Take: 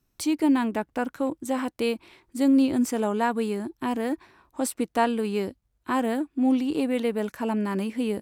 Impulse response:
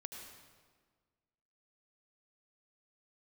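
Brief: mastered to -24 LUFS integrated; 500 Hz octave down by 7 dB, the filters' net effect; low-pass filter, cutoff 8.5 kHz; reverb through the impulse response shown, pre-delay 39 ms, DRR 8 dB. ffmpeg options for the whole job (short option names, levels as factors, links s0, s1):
-filter_complex "[0:a]lowpass=8500,equalizer=f=500:t=o:g=-8.5,asplit=2[s0][s1];[1:a]atrim=start_sample=2205,adelay=39[s2];[s1][s2]afir=irnorm=-1:irlink=0,volume=0.562[s3];[s0][s3]amix=inputs=2:normalize=0,volume=1.68"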